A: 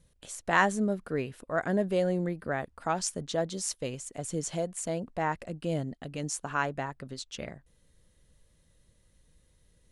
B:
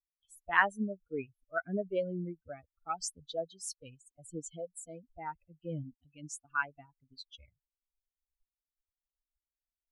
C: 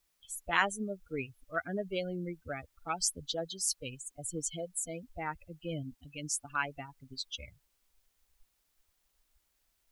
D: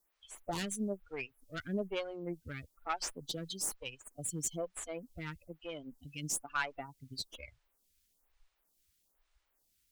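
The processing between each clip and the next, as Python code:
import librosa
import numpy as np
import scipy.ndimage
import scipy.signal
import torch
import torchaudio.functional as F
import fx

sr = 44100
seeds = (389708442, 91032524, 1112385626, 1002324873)

y1 = fx.bin_expand(x, sr, power=3.0)
y1 = fx.dynamic_eq(y1, sr, hz=1500.0, q=1.7, threshold_db=-51.0, ratio=4.0, max_db=7)
y1 = y1 * librosa.db_to_amplitude(-2.0)
y2 = fx.spectral_comp(y1, sr, ratio=2.0)
y2 = y2 * librosa.db_to_amplitude(-2.0)
y3 = fx.tube_stage(y2, sr, drive_db=29.0, bias=0.5)
y3 = fx.stagger_phaser(y3, sr, hz=1.1)
y3 = y3 * librosa.db_to_amplitude(4.0)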